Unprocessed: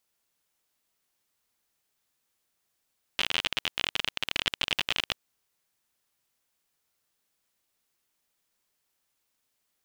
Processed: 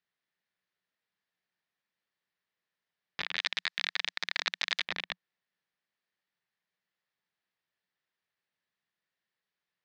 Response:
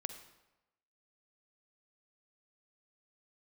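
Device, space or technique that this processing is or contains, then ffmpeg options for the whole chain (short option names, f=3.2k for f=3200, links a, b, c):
ring modulator pedal into a guitar cabinet: -filter_complex "[0:a]aeval=exprs='val(0)*sgn(sin(2*PI*660*n/s))':c=same,highpass=99,equalizer=f=180:t=q:w=4:g=7,equalizer=f=260:t=q:w=4:g=-5,equalizer=f=1.8k:t=q:w=4:g=9,lowpass=f=4.6k:w=0.5412,lowpass=f=4.6k:w=1.3066,asettb=1/sr,asplit=3[a][b][c];[a]atrim=end=3.374[d];[b]atrim=start=3.37:end=4.85,asetpts=PTS-STARTPTS,afade=t=in:d=0.004:c=qsin,afade=t=out:st=1.476:d=0.004:c=qsin,aemphasis=mode=production:type=riaa[e];[c]atrim=start=4.846[f];[d][e]acrossfade=d=0.004:c1=hsin:c2=qsin[g];[g][f]acrossfade=d=0.004:c1=qsin:c2=hsin,volume=-8dB"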